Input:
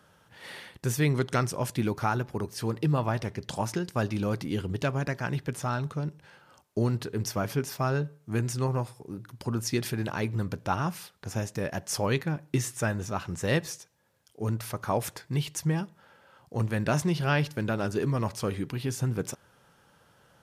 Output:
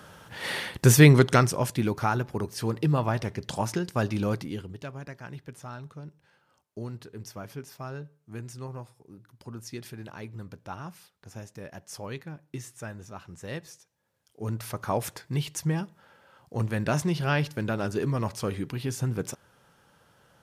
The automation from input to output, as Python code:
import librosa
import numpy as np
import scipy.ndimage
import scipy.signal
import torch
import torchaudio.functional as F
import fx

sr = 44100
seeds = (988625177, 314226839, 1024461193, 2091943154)

y = fx.gain(x, sr, db=fx.line((0.99, 11.5), (1.75, 1.5), (4.32, 1.5), (4.77, -10.5), (13.69, -10.5), (14.71, 0.0)))